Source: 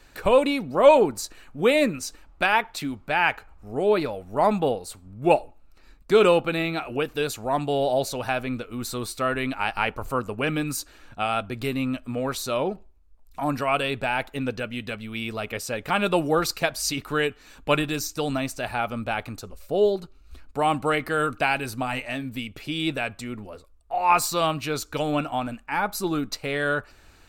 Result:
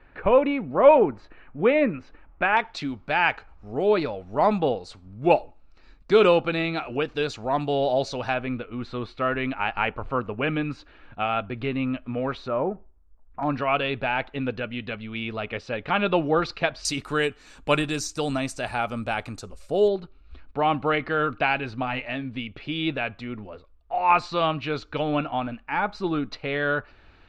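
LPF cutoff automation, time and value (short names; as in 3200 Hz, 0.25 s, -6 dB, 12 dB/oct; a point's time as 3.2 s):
LPF 24 dB/oct
2400 Hz
from 2.57 s 5500 Hz
from 8.34 s 3200 Hz
from 12.48 s 1700 Hz
from 13.43 s 3800 Hz
from 16.85 s 9500 Hz
from 19.88 s 3800 Hz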